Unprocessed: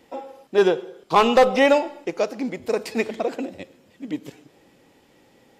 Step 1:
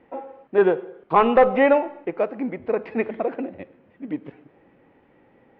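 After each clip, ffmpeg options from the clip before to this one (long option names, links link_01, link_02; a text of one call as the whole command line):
ffmpeg -i in.wav -af "lowpass=frequency=2200:width=0.5412,lowpass=frequency=2200:width=1.3066" out.wav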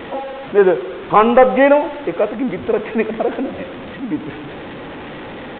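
ffmpeg -i in.wav -af "aeval=exprs='val(0)+0.5*0.0299*sgn(val(0))':channel_layout=same,aresample=8000,aresample=44100,volume=5dB" out.wav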